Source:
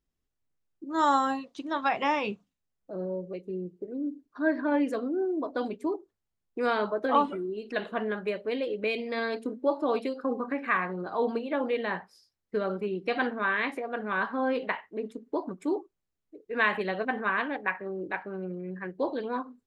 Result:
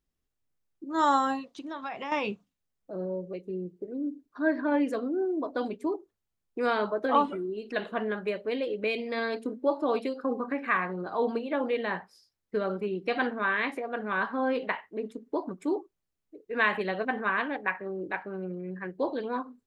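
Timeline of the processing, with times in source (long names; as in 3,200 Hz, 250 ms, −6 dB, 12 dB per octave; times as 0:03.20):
0:01.55–0:02.12: downward compressor 2.5 to 1, threshold −36 dBFS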